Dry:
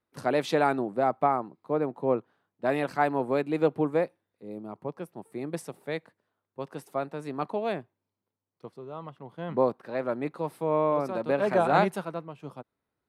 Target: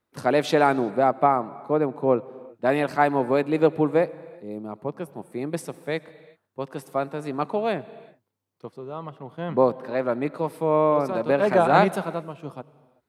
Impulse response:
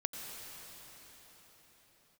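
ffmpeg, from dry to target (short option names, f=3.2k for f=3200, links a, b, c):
-filter_complex "[0:a]asplit=2[a][b];[1:a]atrim=start_sample=2205,afade=t=out:st=0.44:d=0.01,atrim=end_sample=19845[c];[b][c]afir=irnorm=-1:irlink=0,volume=-13dB[d];[a][d]amix=inputs=2:normalize=0,volume=3.5dB"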